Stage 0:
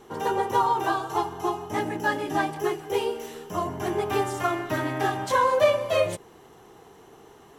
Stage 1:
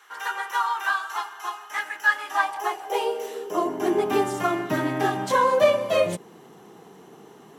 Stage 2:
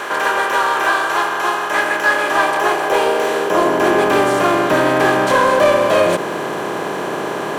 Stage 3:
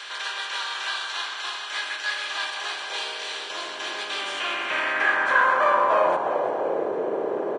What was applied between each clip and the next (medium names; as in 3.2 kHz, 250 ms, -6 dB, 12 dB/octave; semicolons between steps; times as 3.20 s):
high-pass sweep 1.5 kHz -> 180 Hz, 2.05–4.36 s; trim +1 dB
spectral levelling over time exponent 0.4; in parallel at -4 dB: hard clipper -14.5 dBFS, distortion -12 dB; on the sum: trim -1 dB
frequency-shifting echo 344 ms, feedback 51%, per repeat -41 Hz, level -10 dB; band-pass sweep 3.9 kHz -> 480 Hz, 4.09–6.94 s; Vorbis 32 kbps 22.05 kHz